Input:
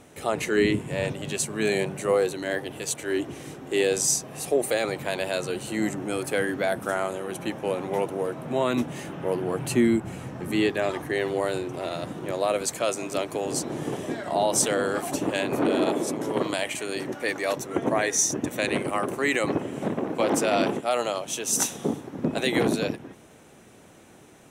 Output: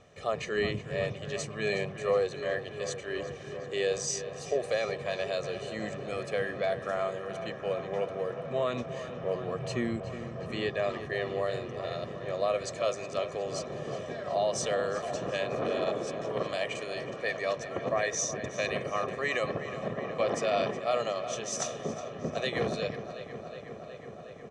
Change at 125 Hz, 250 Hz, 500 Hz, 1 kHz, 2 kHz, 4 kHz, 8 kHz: −4.5, −12.0, −4.0, −5.0, −5.5, −5.5, −10.5 decibels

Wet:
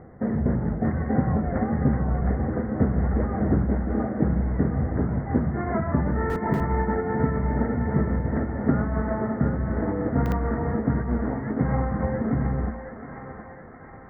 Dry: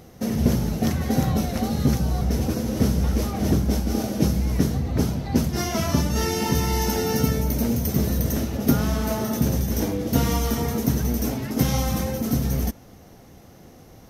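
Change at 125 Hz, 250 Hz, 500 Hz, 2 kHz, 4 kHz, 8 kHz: −1.5 dB, −1.5 dB, −0.5 dB, −1.0 dB, below −25 dB, below −30 dB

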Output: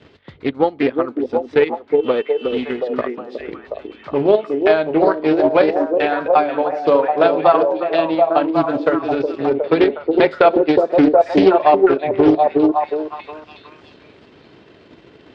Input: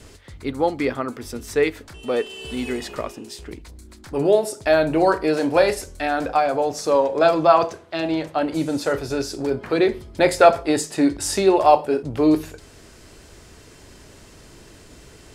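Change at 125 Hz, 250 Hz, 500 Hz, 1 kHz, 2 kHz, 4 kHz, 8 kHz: +0.5 dB, +5.0 dB, +5.0 dB, +3.5 dB, +2.0 dB, −0.5 dB, below −25 dB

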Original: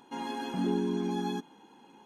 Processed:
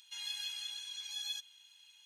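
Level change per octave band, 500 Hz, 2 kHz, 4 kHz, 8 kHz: below −40 dB, −4.5 dB, +8.0 dB, +7.0 dB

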